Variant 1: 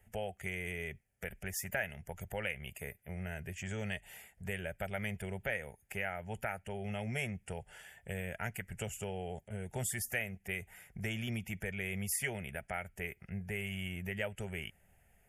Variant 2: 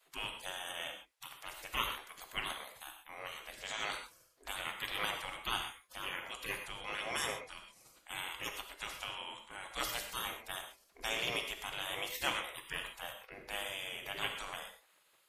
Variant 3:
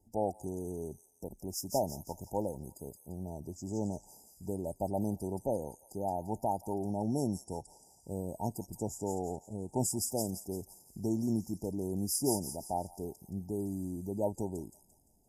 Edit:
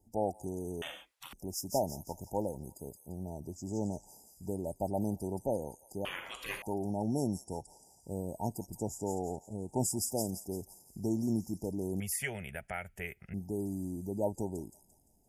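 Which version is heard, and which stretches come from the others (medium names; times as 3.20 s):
3
0.82–1.33 s: from 2
6.05–6.62 s: from 2
12.00–13.34 s: from 1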